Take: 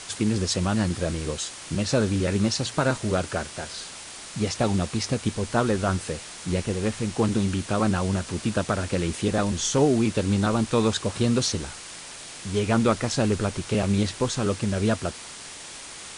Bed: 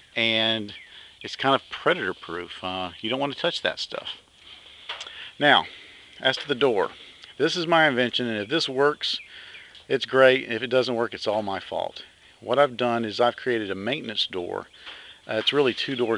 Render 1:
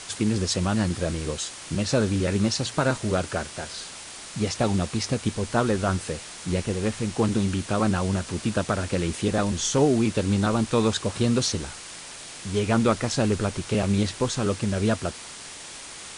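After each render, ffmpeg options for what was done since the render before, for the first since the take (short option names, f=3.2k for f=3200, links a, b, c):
-af anull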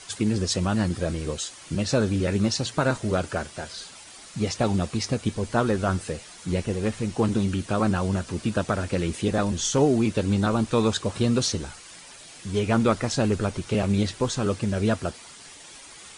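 -af "afftdn=nr=9:nf=-41"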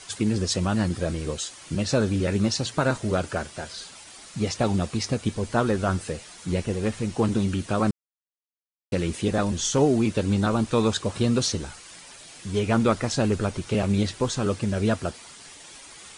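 -filter_complex "[0:a]asplit=3[a][b][c];[a]atrim=end=7.91,asetpts=PTS-STARTPTS,afade=t=out:st=7.906:d=0.004:c=hsin[d];[b]atrim=start=7.91:end=8.92,asetpts=PTS-STARTPTS,volume=0[e];[c]atrim=start=8.92,asetpts=PTS-STARTPTS,afade=t=in:d=0.004:c=hsin[f];[d][e][f]concat=n=3:v=0:a=1"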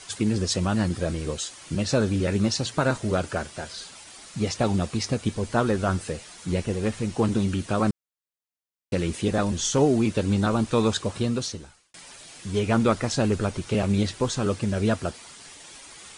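-filter_complex "[0:a]asplit=2[a][b];[a]atrim=end=11.94,asetpts=PTS-STARTPTS,afade=t=out:st=10.99:d=0.95[c];[b]atrim=start=11.94,asetpts=PTS-STARTPTS,afade=t=in:d=0.004:c=hsin[d];[c][d]concat=n=2:v=0:a=1"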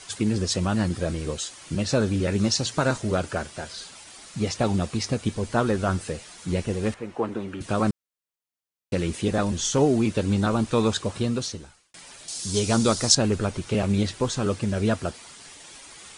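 -filter_complex "[0:a]asettb=1/sr,asplit=3[a][b][c];[a]atrim=end=2.384[d];[b]atrim=start=2.38:end=3.02,asetpts=PTS-STARTPTS,afade=t=in:d=0.004:c=qsin,afade=t=out:st=0.636:d=0.004:c=qsin,equalizer=f=6.1k:t=o:w=1.1:g=4.5[e];[c]atrim=start=3.016[f];[d][e]acrossfade=d=0.004:c1=hsin:c2=qsin[g];[g][f]acrossfade=d=0.004:c1=qsin:c2=hsin,asettb=1/sr,asplit=3[h][i][j];[h]atrim=end=6.944[k];[i]atrim=start=6.94:end=7.61,asetpts=PTS-STARTPTS,afade=t=in:d=0.004:c=qsin,afade=t=out:st=0.666:d=0.004:c=qsin,acrossover=split=300 2400:gain=0.178 1 0.141[l][m][n];[l][m][n]amix=inputs=3:normalize=0[o];[j]atrim=start=7.606[p];[k][o]acrossfade=d=0.004:c1=hsin:c2=qsin[q];[q][p]acrossfade=d=0.004:c1=qsin:c2=hsin,asettb=1/sr,asplit=3[r][s][t];[r]atrim=end=12.284[u];[s]atrim=start=12.28:end=13.15,asetpts=PTS-STARTPTS,afade=t=in:d=0.004:c=qsin,afade=t=out:st=0.866:d=0.004:c=qsin,highshelf=f=3.4k:t=q:w=1.5:g=12[v];[t]atrim=start=13.146[w];[u][v]acrossfade=d=0.004:c1=hsin:c2=qsin[x];[x][w]acrossfade=d=0.004:c1=qsin:c2=hsin"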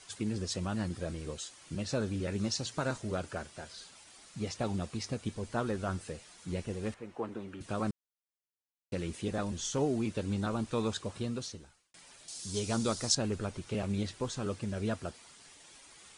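-af "volume=-10.5dB"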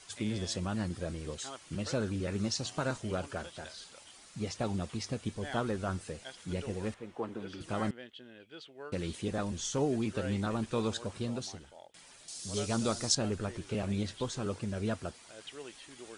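-filter_complex "[1:a]volume=-25.5dB[a];[0:a][a]amix=inputs=2:normalize=0"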